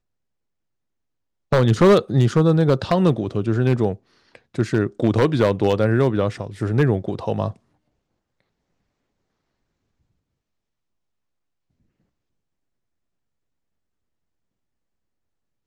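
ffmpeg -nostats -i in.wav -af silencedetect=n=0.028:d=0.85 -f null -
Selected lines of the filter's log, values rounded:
silence_start: 0.00
silence_end: 1.52 | silence_duration: 1.52
silence_start: 7.51
silence_end: 15.67 | silence_duration: 8.16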